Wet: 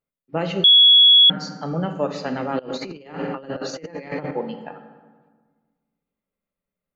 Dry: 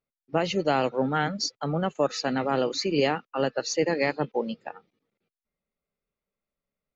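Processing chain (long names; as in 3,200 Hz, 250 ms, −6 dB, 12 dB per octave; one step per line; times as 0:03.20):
convolution reverb RT60 1.5 s, pre-delay 3 ms, DRR 5.5 dB
0:02.59–0:04.31: compressor whose output falls as the input rises −30 dBFS, ratio −0.5
parametric band 5,900 Hz −10 dB 0.91 octaves
0:00.64–0:01.30: beep over 3,360 Hz −8 dBFS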